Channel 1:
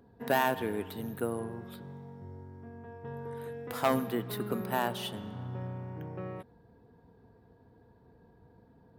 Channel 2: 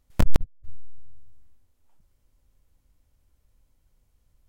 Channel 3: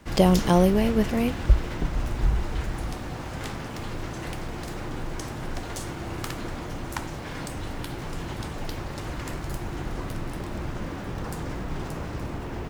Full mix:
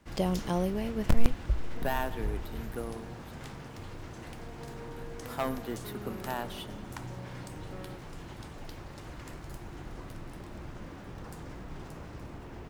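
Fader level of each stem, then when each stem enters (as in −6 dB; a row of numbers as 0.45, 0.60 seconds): −5.0, −4.5, −11.0 decibels; 1.55, 0.90, 0.00 seconds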